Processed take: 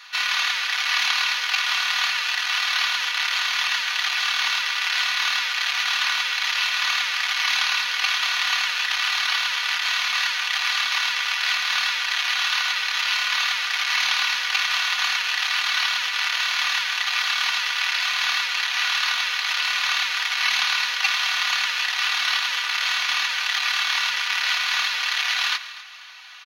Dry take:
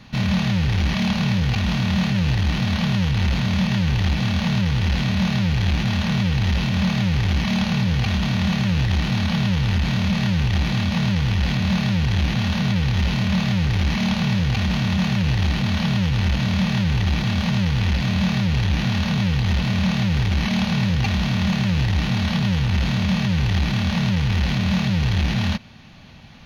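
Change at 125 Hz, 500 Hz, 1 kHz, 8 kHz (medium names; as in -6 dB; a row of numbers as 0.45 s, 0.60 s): under -40 dB, under -15 dB, +4.0 dB, no reading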